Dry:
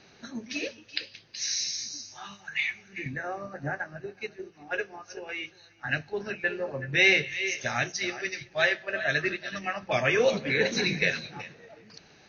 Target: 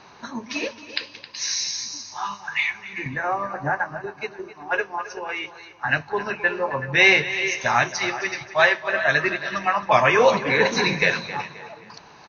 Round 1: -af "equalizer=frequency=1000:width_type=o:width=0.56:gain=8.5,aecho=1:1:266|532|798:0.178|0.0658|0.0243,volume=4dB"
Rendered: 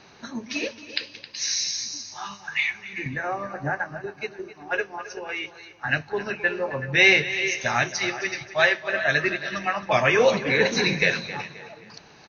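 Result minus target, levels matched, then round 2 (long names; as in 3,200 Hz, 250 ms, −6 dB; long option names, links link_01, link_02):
1,000 Hz band −4.5 dB
-af "equalizer=frequency=1000:width_type=o:width=0.56:gain=19.5,aecho=1:1:266|532|798:0.178|0.0658|0.0243,volume=4dB"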